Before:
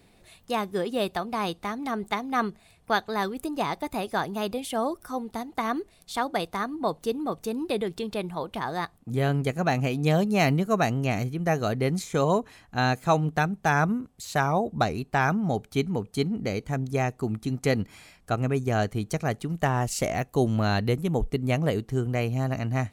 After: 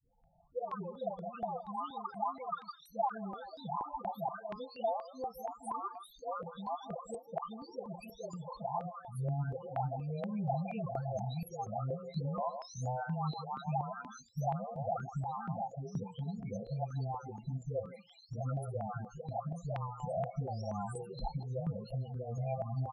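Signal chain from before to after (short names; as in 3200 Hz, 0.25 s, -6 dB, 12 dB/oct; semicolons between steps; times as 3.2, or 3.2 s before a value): spectral delay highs late, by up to 0.991 s; HPF 55 Hz 6 dB/oct; bell 3200 Hz -5 dB 0.73 oct; notches 60/120/180/240/300/360/420/480/540 Hz; speakerphone echo 0.16 s, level -12 dB; limiter -23.5 dBFS, peak gain reduction 10 dB; fixed phaser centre 770 Hz, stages 4; loudest bins only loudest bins 16; high shelf 11000 Hz +11 dB; step phaser 4.2 Hz 660–3300 Hz; gain +1 dB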